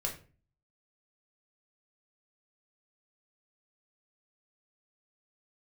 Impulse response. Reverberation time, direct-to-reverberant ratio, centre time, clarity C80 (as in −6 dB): 0.40 s, 0.0 dB, 19 ms, 15.0 dB